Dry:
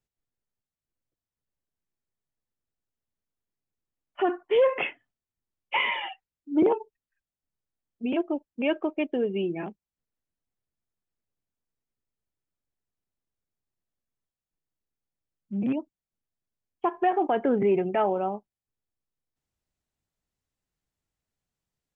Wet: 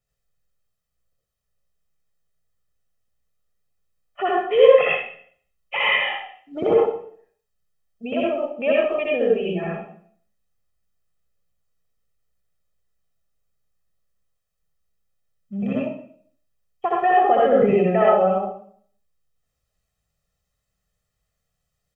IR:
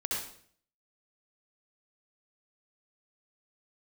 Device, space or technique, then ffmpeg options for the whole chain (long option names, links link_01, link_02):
microphone above a desk: -filter_complex "[0:a]aecho=1:1:1.6:0.79[link_01];[1:a]atrim=start_sample=2205[link_02];[link_01][link_02]afir=irnorm=-1:irlink=0,volume=2dB"